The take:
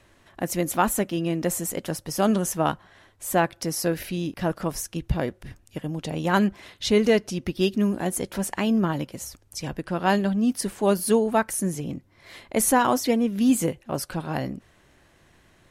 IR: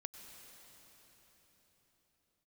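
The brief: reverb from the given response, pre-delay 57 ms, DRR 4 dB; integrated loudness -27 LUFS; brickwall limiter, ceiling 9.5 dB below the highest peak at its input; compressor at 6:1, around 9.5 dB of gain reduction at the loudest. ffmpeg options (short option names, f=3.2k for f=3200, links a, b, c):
-filter_complex "[0:a]acompressor=threshold=-25dB:ratio=6,alimiter=limit=-23.5dB:level=0:latency=1,asplit=2[a][b];[1:a]atrim=start_sample=2205,adelay=57[c];[b][c]afir=irnorm=-1:irlink=0,volume=0dB[d];[a][d]amix=inputs=2:normalize=0,volume=5dB"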